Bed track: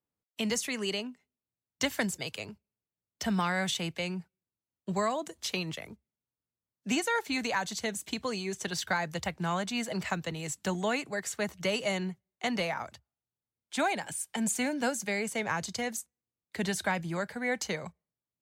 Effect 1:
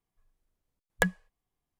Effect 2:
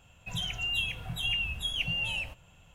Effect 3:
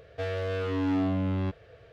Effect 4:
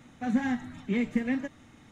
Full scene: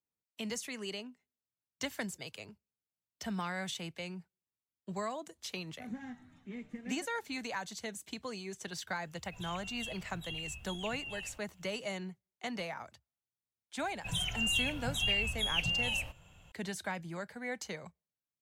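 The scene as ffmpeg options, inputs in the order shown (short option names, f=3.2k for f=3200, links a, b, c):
-filter_complex "[2:a]asplit=2[a][b];[0:a]volume=-8dB[c];[a]acrusher=bits=10:mix=0:aa=0.000001[d];[4:a]atrim=end=1.91,asetpts=PTS-STARTPTS,volume=-16.5dB,afade=t=in:d=0.004:c=hsin,afade=t=out:st=1.906:d=0.004:c=hsin,adelay=5580[e];[d]atrim=end=2.74,asetpts=PTS-STARTPTS,volume=-12.5dB,afade=t=in:d=0.004:c=hsin,afade=t=out:st=2.736:d=0.004:c=hsin,adelay=9050[f];[b]atrim=end=2.74,asetpts=PTS-STARTPTS,volume=-1dB,afade=t=in:d=0.004:c=hsin,afade=t=out:st=2.736:d=0.004:c=hsin,adelay=13780[g];[c][e][f][g]amix=inputs=4:normalize=0"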